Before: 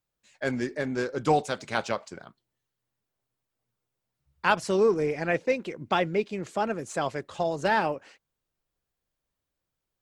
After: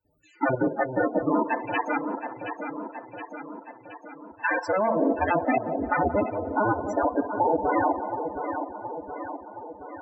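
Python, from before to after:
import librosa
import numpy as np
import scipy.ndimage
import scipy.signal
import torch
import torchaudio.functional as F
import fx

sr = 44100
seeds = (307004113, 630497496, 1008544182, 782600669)

y = fx.cycle_switch(x, sr, every=2, mode='inverted')
y = scipy.signal.sosfilt(scipy.signal.butter(2, 49.0, 'highpass', fs=sr, output='sos'), y)
y = fx.rev_fdn(y, sr, rt60_s=0.42, lf_ratio=0.8, hf_ratio=0.7, size_ms=20.0, drr_db=1.5)
y = fx.level_steps(y, sr, step_db=14)
y = fx.low_shelf(y, sr, hz=370.0, db=-7.5, at=(1.45, 5.01))
y = fx.echo_feedback(y, sr, ms=721, feedback_pct=45, wet_db=-11)
y = fx.spec_topn(y, sr, count=16)
y = fx.notch(y, sr, hz=440.0, q=12.0)
y = fx.echo_wet_bandpass(y, sr, ms=177, feedback_pct=49, hz=560.0, wet_db=-11)
y = fx.band_squash(y, sr, depth_pct=40)
y = y * librosa.db_to_amplitude(8.5)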